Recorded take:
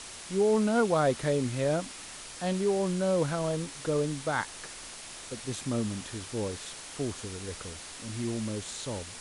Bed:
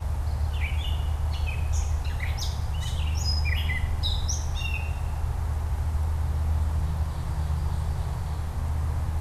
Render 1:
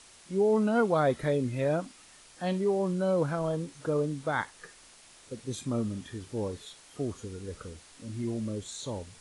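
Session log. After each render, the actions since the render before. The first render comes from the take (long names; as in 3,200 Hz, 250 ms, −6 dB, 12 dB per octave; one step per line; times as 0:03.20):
noise reduction from a noise print 11 dB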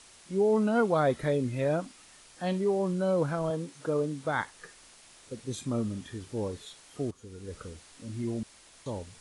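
0:03.50–0:04.25: high-pass filter 140 Hz
0:07.11–0:07.58: fade in, from −14 dB
0:08.43–0:08.86: fill with room tone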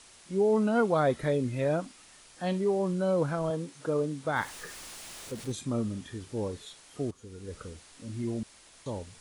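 0:04.36–0:05.52: converter with a step at zero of −41.5 dBFS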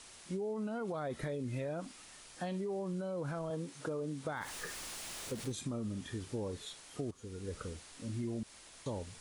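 brickwall limiter −25 dBFS, peak gain reduction 10.5 dB
downward compressor, threshold −35 dBFS, peak gain reduction 7 dB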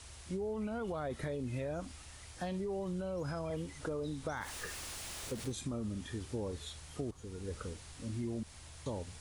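mix in bed −27 dB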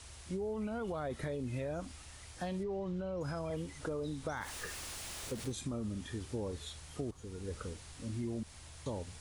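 0:02.63–0:03.21: high-frequency loss of the air 130 metres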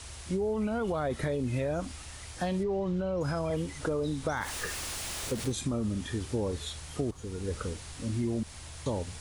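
level +7.5 dB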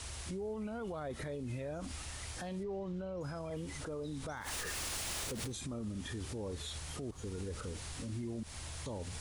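downward compressor, threshold −33 dBFS, peak gain reduction 7 dB
brickwall limiter −33.5 dBFS, peak gain reduction 11 dB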